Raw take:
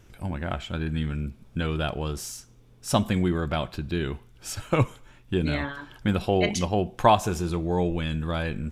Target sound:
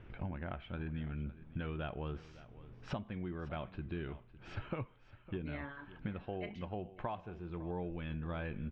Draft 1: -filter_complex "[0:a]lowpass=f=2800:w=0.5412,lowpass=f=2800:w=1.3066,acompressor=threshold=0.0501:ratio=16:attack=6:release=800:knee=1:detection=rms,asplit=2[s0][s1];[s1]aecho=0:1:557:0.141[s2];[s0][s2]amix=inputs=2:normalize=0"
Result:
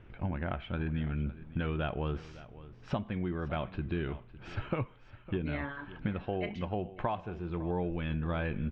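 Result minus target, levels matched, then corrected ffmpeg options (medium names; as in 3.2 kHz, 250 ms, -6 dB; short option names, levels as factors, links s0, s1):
compression: peak gain reduction -7 dB
-filter_complex "[0:a]lowpass=f=2800:w=0.5412,lowpass=f=2800:w=1.3066,acompressor=threshold=0.0211:ratio=16:attack=6:release=800:knee=1:detection=rms,asplit=2[s0][s1];[s1]aecho=0:1:557:0.141[s2];[s0][s2]amix=inputs=2:normalize=0"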